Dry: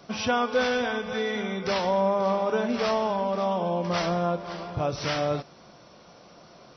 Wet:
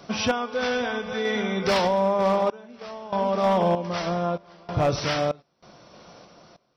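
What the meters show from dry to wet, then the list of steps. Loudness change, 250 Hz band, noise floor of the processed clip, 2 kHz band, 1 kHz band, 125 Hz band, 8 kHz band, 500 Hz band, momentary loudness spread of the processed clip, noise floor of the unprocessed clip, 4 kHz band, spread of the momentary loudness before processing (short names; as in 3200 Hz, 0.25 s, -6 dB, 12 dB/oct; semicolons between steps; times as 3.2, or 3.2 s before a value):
+2.0 dB, +1.5 dB, -69 dBFS, +1.0 dB, +1.5 dB, +3.0 dB, n/a, +1.5 dB, 10 LU, -52 dBFS, +2.0 dB, 6 LU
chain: random-step tremolo 3.2 Hz, depth 95%; hard clip -22 dBFS, distortion -21 dB; gain +6.5 dB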